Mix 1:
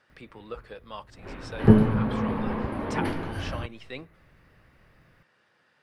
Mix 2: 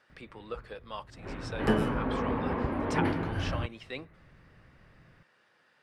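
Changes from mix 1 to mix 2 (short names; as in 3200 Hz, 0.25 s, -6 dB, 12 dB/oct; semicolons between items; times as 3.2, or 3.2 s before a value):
first sound: add tone controls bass +7 dB, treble -11 dB; second sound: add tilt +4.5 dB/oct; master: add low shelf 150 Hz -7.5 dB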